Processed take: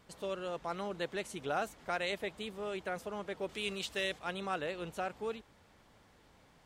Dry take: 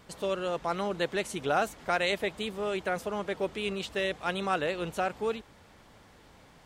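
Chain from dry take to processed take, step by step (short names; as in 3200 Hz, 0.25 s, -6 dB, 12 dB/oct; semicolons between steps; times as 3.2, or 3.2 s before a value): 3.49–4.19 high shelf 2400 Hz +9.5 dB; gain -7.5 dB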